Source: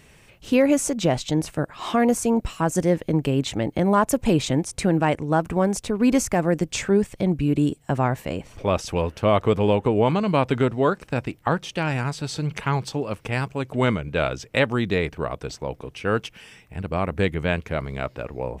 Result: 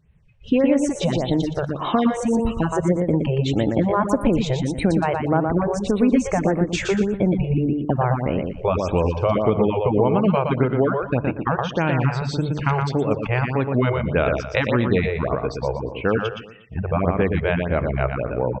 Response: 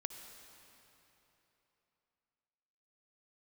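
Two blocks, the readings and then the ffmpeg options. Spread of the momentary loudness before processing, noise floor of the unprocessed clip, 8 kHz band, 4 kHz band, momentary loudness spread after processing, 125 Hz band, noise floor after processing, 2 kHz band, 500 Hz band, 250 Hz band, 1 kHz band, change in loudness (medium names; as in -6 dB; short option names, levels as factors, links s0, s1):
9 LU, -55 dBFS, -6.5 dB, -1.5 dB, 5 LU, +3.5 dB, -36 dBFS, +1.0 dB, +2.0 dB, +2.0 dB, +1.5 dB, +2.0 dB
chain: -filter_complex "[0:a]lowpass=8100,acompressor=threshold=0.0891:ratio=6,asplit=2[s0][s1];[1:a]atrim=start_sample=2205,atrim=end_sample=6174,asetrate=52920,aresample=44100[s2];[s1][s2]afir=irnorm=-1:irlink=0,volume=1.78[s3];[s0][s3]amix=inputs=2:normalize=0,afftdn=nr=25:nf=-33,highshelf=f=4000:g=-10.5,bandreject=f=50:t=h:w=6,bandreject=f=100:t=h:w=6,bandreject=f=150:t=h:w=6,aecho=1:1:119|238|357|476:0.596|0.185|0.0572|0.0177,afftfilt=real='re*(1-between(b*sr/1024,220*pow(6200/220,0.5+0.5*sin(2*PI*1.7*pts/sr))/1.41,220*pow(6200/220,0.5+0.5*sin(2*PI*1.7*pts/sr))*1.41))':imag='im*(1-between(b*sr/1024,220*pow(6200/220,0.5+0.5*sin(2*PI*1.7*pts/sr))/1.41,220*pow(6200/220,0.5+0.5*sin(2*PI*1.7*pts/sr))*1.41))':win_size=1024:overlap=0.75"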